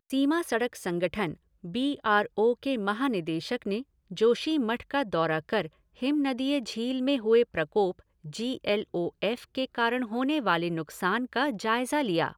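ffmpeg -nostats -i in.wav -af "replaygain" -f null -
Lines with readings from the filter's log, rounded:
track_gain = +7.9 dB
track_peak = 0.206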